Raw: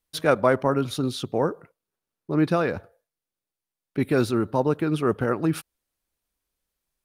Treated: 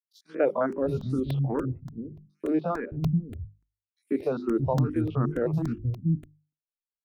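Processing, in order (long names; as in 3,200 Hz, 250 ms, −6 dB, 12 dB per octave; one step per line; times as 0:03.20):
spectrum averaged block by block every 50 ms
reverb reduction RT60 0.78 s
noise gate −45 dBFS, range −41 dB
spectral tilt −4 dB per octave
mains-hum notches 50/100/150/200/250/300/350/400 Hz
three-band delay without the direct sound highs, mids, lows 140/620 ms, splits 230/4,600 Hz
regular buffer underruns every 0.29 s, samples 128, repeat, from 0:00.72
frequency shifter mixed with the dry sound +2.4 Hz
level −2 dB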